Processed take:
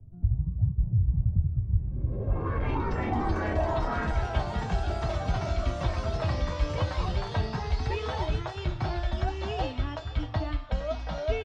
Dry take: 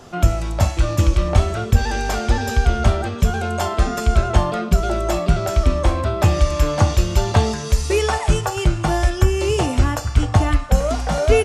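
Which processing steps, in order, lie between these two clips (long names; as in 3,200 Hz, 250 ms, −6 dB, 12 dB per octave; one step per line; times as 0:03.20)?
parametric band 330 Hz −11.5 dB 0.22 octaves
0:02.47–0:04.11: comparator with hysteresis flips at −29.5 dBFS
tuned comb filter 320 Hz, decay 0.16 s, harmonics all, mix 90%
on a send: single-tap delay 594 ms −22.5 dB
on the sum: low-pass filter sweep 100 Hz → 4,200 Hz, 0:02.61–0:04.50
delay with pitch and tempo change per echo 109 ms, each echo +3 semitones, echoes 3
head-to-tape spacing loss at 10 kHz 20 dB
multiband upward and downward compressor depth 40%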